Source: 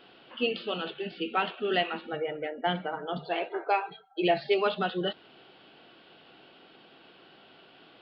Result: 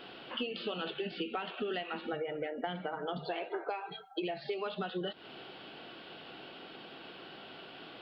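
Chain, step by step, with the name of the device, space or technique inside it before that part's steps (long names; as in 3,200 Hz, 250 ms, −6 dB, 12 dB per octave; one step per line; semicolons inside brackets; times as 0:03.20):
serial compression, leveller first (downward compressor 3 to 1, threshold −31 dBFS, peak gain reduction 9 dB; downward compressor 6 to 1, threshold −40 dBFS, peak gain reduction 12 dB)
level +6 dB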